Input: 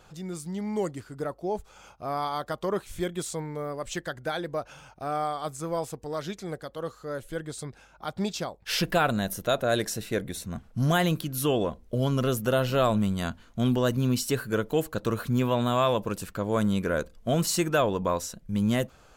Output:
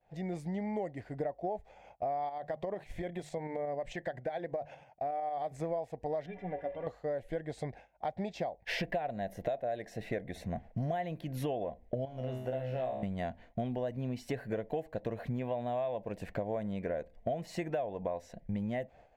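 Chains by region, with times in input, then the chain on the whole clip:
0:02.29–0:05.52: mains-hum notches 50/100/150 Hz + downward compressor 4 to 1, threshold −33 dBFS + shaped tremolo saw up 11 Hz, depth 40%
0:06.26–0:06.87: converter with a step at zero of −39 dBFS + Savitzky-Golay smoothing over 25 samples + stiff-string resonator 85 Hz, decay 0.2 s, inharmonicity 0.03
0:12.05–0:13.03: mu-law and A-law mismatch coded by A + tuned comb filter 64 Hz, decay 0.63 s, mix 90%
whole clip: downward expander −44 dBFS; drawn EQ curve 390 Hz 0 dB, 710 Hz +13 dB, 1,300 Hz −14 dB, 1,900 Hz +7 dB, 3,000 Hz −6 dB, 9,100 Hz −19 dB; downward compressor 10 to 1, threshold −32 dBFS

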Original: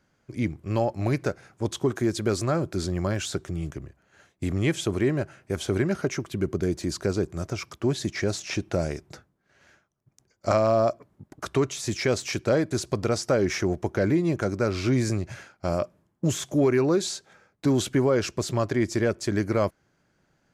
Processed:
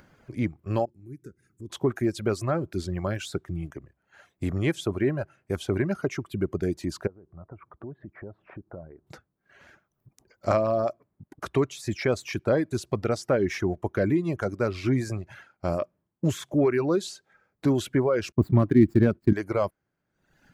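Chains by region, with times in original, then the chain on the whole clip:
0:00.85–0:01.70: drawn EQ curve 370 Hz 0 dB, 650 Hz −27 dB, 1,500 Hz −14 dB, 3,900 Hz −15 dB, 7,400 Hz −1 dB + downward compressor 2 to 1, threshold −45 dBFS
0:07.07–0:09.07: low-pass filter 1,400 Hz 24 dB per octave + downward compressor 2.5 to 1, threshold −43 dBFS
0:18.32–0:19.33: running median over 15 samples + downward expander −38 dBFS + low shelf with overshoot 370 Hz +8.5 dB, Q 1.5
whole clip: parametric band 6,400 Hz −8 dB 1.5 octaves; reverb reduction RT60 1.1 s; upward compression, threshold −46 dBFS

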